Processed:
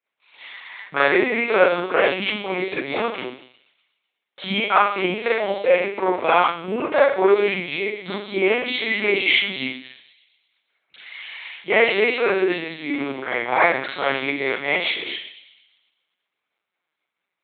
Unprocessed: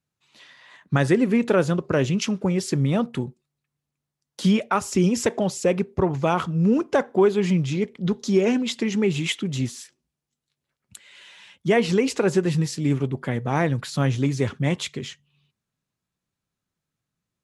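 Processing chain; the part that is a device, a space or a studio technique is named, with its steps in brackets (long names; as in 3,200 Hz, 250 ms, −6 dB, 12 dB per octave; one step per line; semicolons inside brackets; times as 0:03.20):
low-pass filter 6,600 Hz 24 dB per octave
delay with a high-pass on its return 121 ms, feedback 55%, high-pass 4,800 Hz, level −5 dB
four-comb reverb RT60 0.52 s, combs from 31 ms, DRR −6 dB
talking toy (linear-prediction vocoder at 8 kHz pitch kept; high-pass filter 570 Hz 12 dB per octave; parametric band 2,200 Hz +8.5 dB 0.24 octaves)
level +2.5 dB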